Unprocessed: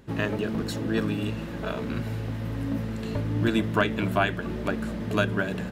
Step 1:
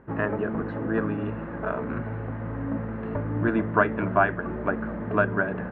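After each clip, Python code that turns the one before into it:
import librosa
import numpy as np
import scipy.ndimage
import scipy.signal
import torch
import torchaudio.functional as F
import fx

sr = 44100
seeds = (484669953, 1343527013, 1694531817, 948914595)

y = scipy.signal.sosfilt(scipy.signal.butter(4, 1600.0, 'lowpass', fs=sr, output='sos'), x)
y = fx.low_shelf(y, sr, hz=460.0, db=-9.0)
y = F.gain(torch.from_numpy(y), 6.5).numpy()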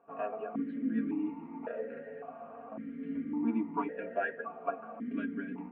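y = x + 0.81 * np.pad(x, (int(4.3 * sr / 1000.0), 0))[:len(x)]
y = fx.chorus_voices(y, sr, voices=4, hz=0.4, base_ms=10, depth_ms=3.0, mix_pct=35)
y = fx.vowel_held(y, sr, hz=1.8)
y = F.gain(torch.from_numpy(y), 2.5).numpy()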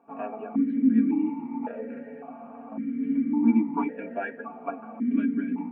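y = fx.small_body(x, sr, hz=(250.0, 840.0, 2300.0), ring_ms=45, db=14)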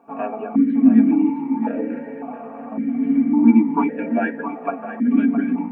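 y = x + 10.0 ** (-11.0 / 20.0) * np.pad(x, (int(664 * sr / 1000.0), 0))[:len(x)]
y = F.gain(torch.from_numpy(y), 8.0).numpy()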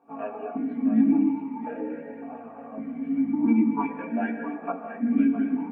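y = fx.chorus_voices(x, sr, voices=2, hz=0.43, base_ms=18, depth_ms=1.4, mix_pct=55)
y = fx.rev_gated(y, sr, seeds[0], gate_ms=280, shape='flat', drr_db=8.0)
y = F.gain(torch.from_numpy(y), -4.5).numpy()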